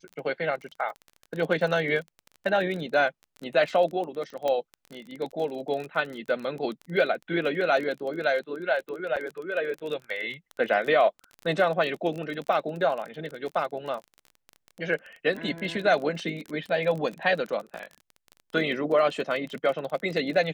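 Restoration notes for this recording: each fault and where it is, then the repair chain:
crackle 26/s -32 dBFS
4.48 pop -16 dBFS
9.16–9.17 gap 7 ms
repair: de-click; interpolate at 9.16, 7 ms

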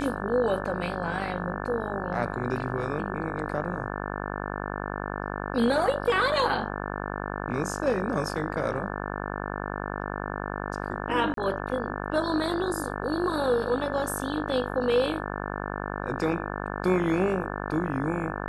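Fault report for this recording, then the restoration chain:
buzz 50 Hz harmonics 35 -33 dBFS
11.34–11.37 gap 33 ms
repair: de-hum 50 Hz, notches 35; interpolate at 11.34, 33 ms

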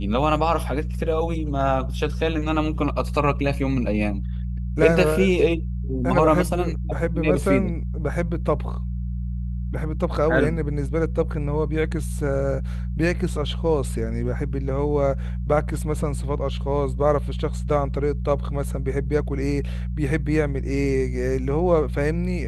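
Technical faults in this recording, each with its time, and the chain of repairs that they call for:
hum 60 Hz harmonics 3 -27 dBFS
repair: de-hum 60 Hz, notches 3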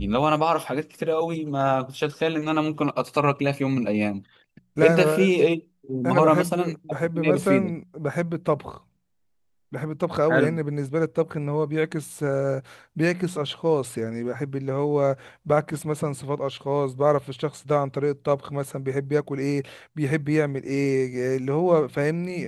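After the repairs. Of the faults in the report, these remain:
none

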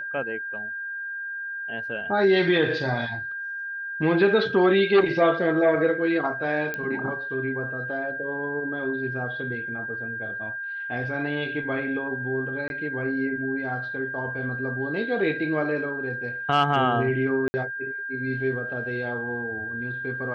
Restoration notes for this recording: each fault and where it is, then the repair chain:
tone 1600 Hz -30 dBFS
6.74 pop -16 dBFS
12.68–12.7 gap 21 ms
17.48–17.54 gap 60 ms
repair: de-click; notch 1600 Hz, Q 30; interpolate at 12.68, 21 ms; interpolate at 17.48, 60 ms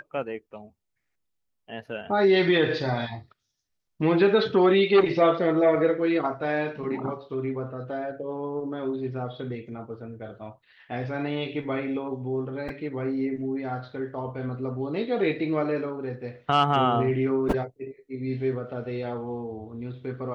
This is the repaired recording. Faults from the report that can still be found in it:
none

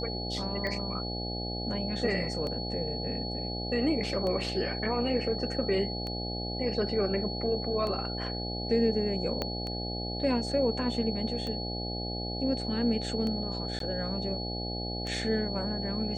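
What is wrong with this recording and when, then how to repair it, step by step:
buzz 60 Hz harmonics 14 -36 dBFS
tick 33 1/3 rpm -23 dBFS
tone 4400 Hz -37 dBFS
9.42 pop -17 dBFS
13.79–13.8 gap 13 ms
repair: de-click; notch 4400 Hz, Q 30; de-hum 60 Hz, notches 14; interpolate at 13.79, 13 ms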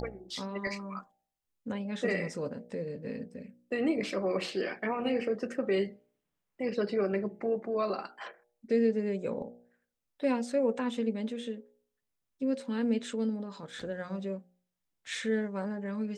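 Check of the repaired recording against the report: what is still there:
9.42 pop

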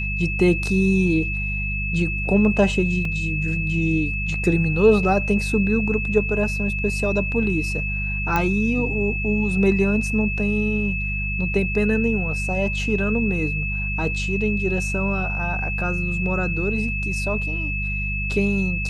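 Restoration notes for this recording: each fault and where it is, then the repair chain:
hum 50 Hz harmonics 4 -27 dBFS
tone 2600 Hz -26 dBFS
3.05 gap 2.7 ms
8.36 pop -8 dBFS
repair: de-click; de-hum 50 Hz, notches 4; notch 2600 Hz, Q 30; interpolate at 3.05, 2.7 ms

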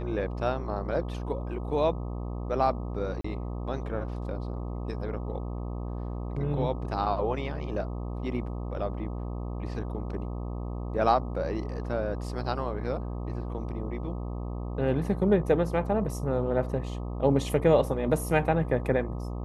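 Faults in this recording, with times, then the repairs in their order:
buzz 60 Hz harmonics 21 -34 dBFS
3.21–3.24 gap 34 ms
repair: de-hum 60 Hz, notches 21; interpolate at 3.21, 34 ms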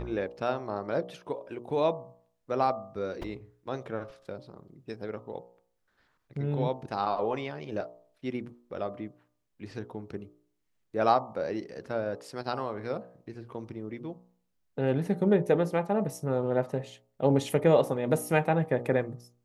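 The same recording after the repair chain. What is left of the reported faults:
none

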